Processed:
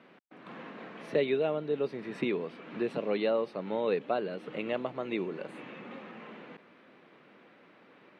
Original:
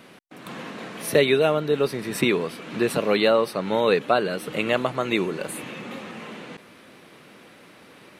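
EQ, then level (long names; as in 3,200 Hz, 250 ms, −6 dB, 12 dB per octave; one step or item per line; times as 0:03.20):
dynamic equaliser 1,400 Hz, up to −7 dB, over −37 dBFS, Q 1.1
band-pass filter 170–2,500 Hz
−8.0 dB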